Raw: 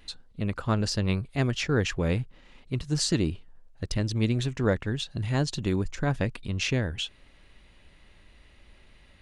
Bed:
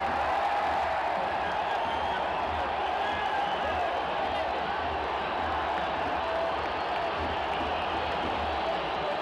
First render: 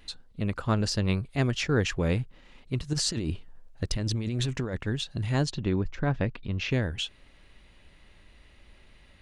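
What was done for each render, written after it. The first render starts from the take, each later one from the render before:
0:02.93–0:04.75: compressor whose output falls as the input rises −29 dBFS
0:05.51–0:06.71: high-frequency loss of the air 190 metres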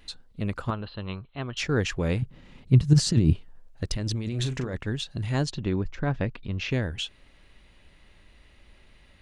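0:00.70–0:01.57: Chebyshev low-pass with heavy ripple 4,200 Hz, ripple 9 dB
0:02.22–0:03.33: parametric band 130 Hz +14 dB 2.3 octaves
0:04.28–0:04.76: double-tracking delay 39 ms −9.5 dB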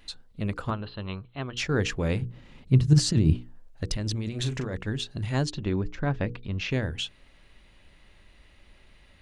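mains-hum notches 60/120/180/240/300/360/420/480 Hz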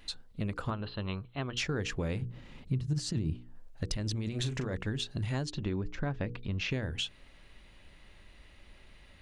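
downward compressor 5 to 1, threshold −30 dBFS, peak gain reduction 15.5 dB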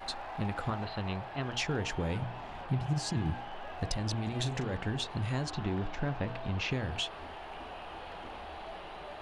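mix in bed −14.5 dB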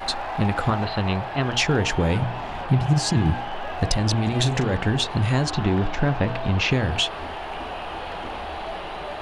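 level +12 dB

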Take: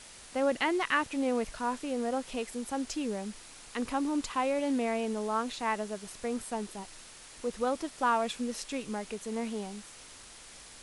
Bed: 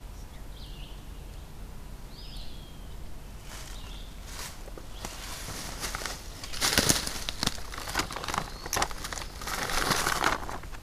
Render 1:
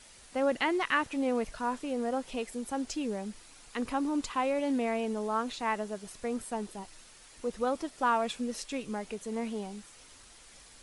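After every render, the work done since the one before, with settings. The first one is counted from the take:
broadband denoise 6 dB, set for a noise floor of −51 dBFS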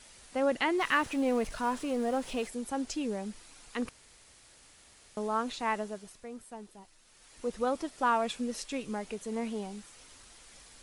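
0:00.78–0:02.48: mu-law and A-law mismatch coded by mu
0:03.89–0:05.17: fill with room tone
0:05.78–0:07.48: duck −10 dB, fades 0.47 s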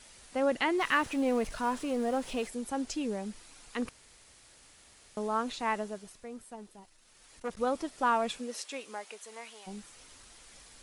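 0:06.53–0:07.57: saturating transformer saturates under 880 Hz
0:08.38–0:09.66: high-pass filter 310 Hz → 1,300 Hz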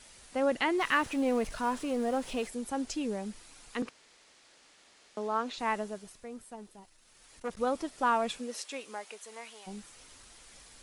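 0:03.82–0:05.58: three-way crossover with the lows and the highs turned down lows −17 dB, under 200 Hz, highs −13 dB, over 6,900 Hz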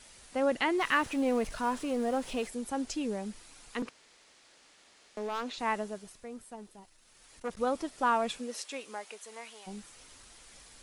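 0:03.79–0:05.44: gain into a clipping stage and back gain 30 dB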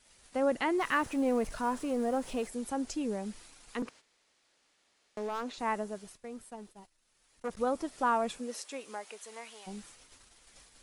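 noise gate −53 dBFS, range −11 dB
dynamic equaliser 3,200 Hz, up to −6 dB, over −48 dBFS, Q 0.78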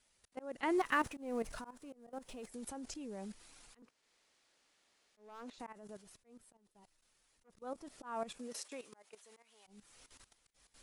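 output level in coarse steps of 15 dB
volume swells 395 ms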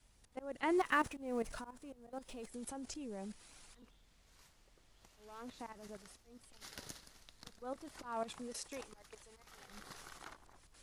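mix in bed −27 dB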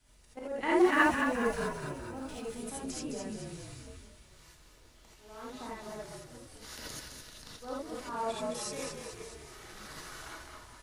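echo with shifted repeats 213 ms, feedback 57%, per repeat −42 Hz, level −5.5 dB
reverb whose tail is shaped and stops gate 100 ms rising, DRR −6 dB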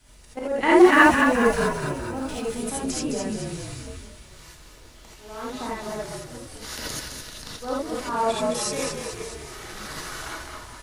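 level +11 dB
brickwall limiter −1 dBFS, peak gain reduction 1.5 dB

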